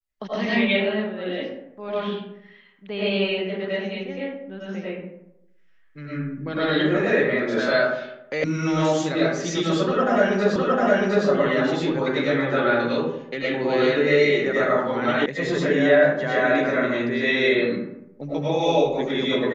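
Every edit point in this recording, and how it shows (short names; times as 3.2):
8.44 sound cut off
10.56 repeat of the last 0.71 s
15.26 sound cut off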